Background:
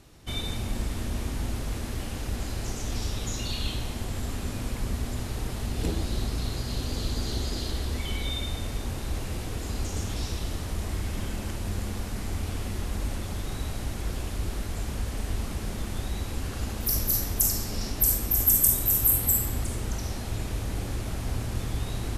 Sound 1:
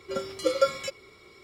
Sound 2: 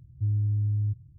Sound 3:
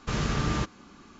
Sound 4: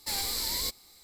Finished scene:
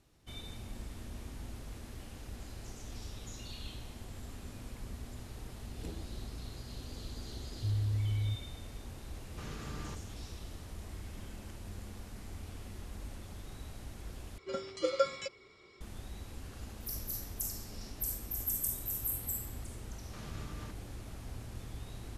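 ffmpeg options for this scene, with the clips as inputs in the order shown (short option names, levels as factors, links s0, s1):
-filter_complex "[3:a]asplit=2[s0][s1];[0:a]volume=0.2[s2];[1:a]lowpass=f=7600:w=0.5412,lowpass=f=7600:w=1.3066[s3];[s1]acompressor=threshold=0.0355:ratio=6:attack=3.2:release=140:knee=1:detection=peak[s4];[s2]asplit=2[s5][s6];[s5]atrim=end=14.384[s7];[s3]atrim=end=1.43,asetpts=PTS-STARTPTS,volume=0.473[s8];[s6]atrim=start=15.806[s9];[2:a]atrim=end=1.18,asetpts=PTS-STARTPTS,volume=0.473,afade=t=in:d=0.004:c=hsin,afade=t=out:st=1.176:d=0.004:c=hsin,adelay=7420[s10];[s0]atrim=end=1.19,asetpts=PTS-STARTPTS,volume=0.15,afade=t=in:d=0.004:c=hsin,afade=t=out:st=1.186:d=0.004:c=hsin,adelay=410130S[s11];[s4]atrim=end=1.19,asetpts=PTS-STARTPTS,volume=0.2,afade=t=in:d=0.004:c=hsin,afade=t=out:st=1.186:d=0.004:c=hsin,adelay=20060[s12];[s7][s8]acrossfade=d=0.004:c1=hsin:c2=hsin[s13];[s13][s9]acrossfade=d=0.004:c1=hsin:c2=hsin[s14];[s14][s10][s11][s12]amix=inputs=4:normalize=0"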